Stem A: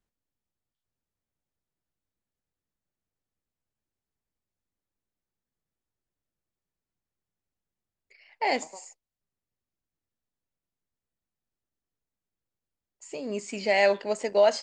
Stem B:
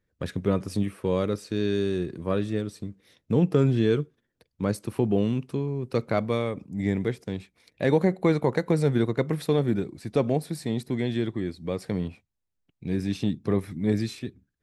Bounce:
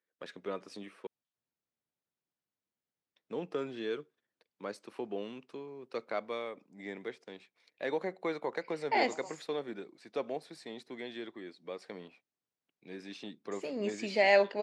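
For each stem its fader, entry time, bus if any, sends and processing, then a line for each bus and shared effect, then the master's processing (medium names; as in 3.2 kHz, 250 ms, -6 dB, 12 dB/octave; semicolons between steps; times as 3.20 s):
-2.5 dB, 0.50 s, no send, none
-7.0 dB, 0.00 s, muted 1.07–3.16 s, no send, Bessel high-pass 550 Hz, order 2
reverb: none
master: band-pass 150–5400 Hz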